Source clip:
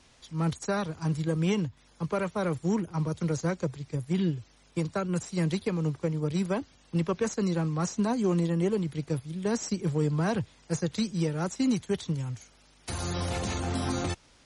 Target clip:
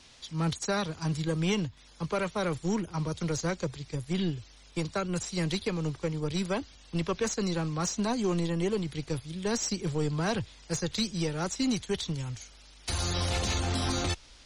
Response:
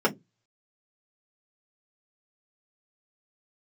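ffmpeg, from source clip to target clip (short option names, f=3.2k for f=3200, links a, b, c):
-filter_complex "[0:a]equalizer=f=4.1k:t=o:w=1.7:g=7.5,asplit=2[a][b];[b]asoftclip=type=tanh:threshold=-27dB,volume=-4.5dB[c];[a][c]amix=inputs=2:normalize=0,asubboost=boost=4.5:cutoff=59,volume=-3.5dB"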